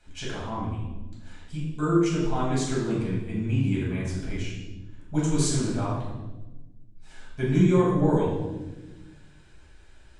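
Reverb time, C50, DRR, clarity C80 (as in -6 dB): 1.1 s, 1.0 dB, -7.5 dB, 3.5 dB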